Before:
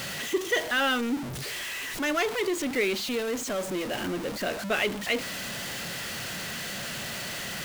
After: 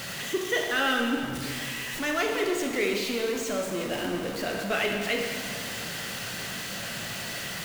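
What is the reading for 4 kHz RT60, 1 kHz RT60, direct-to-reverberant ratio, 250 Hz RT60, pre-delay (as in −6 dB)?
1.8 s, 2.1 s, 1.5 dB, 2.3 s, 19 ms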